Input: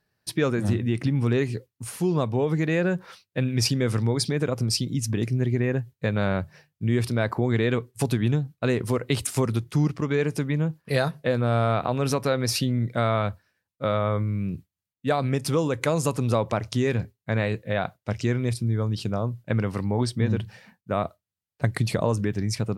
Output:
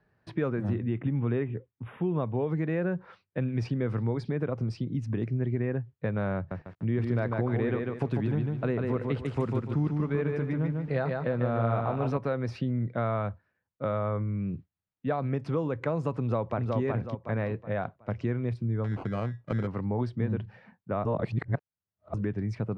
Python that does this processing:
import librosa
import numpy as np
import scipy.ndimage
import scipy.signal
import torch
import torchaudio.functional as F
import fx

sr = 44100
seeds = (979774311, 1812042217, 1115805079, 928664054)

y = fx.spec_erase(x, sr, start_s=0.9, length_s=1.58, low_hz=3800.0, high_hz=10000.0)
y = fx.echo_crushed(y, sr, ms=147, feedback_pct=35, bits=8, wet_db=-3.5, at=(6.36, 12.17))
y = fx.echo_throw(y, sr, start_s=16.2, length_s=0.57, ms=370, feedback_pct=35, wet_db=-3.0)
y = fx.sample_hold(y, sr, seeds[0], rate_hz=1800.0, jitter_pct=0, at=(18.84, 19.67))
y = fx.edit(y, sr, fx.reverse_span(start_s=21.05, length_s=1.09), tone=tone)
y = scipy.signal.sosfilt(scipy.signal.butter(2, 1700.0, 'lowpass', fs=sr, output='sos'), y)
y = fx.band_squash(y, sr, depth_pct=40)
y = y * librosa.db_to_amplitude(-5.5)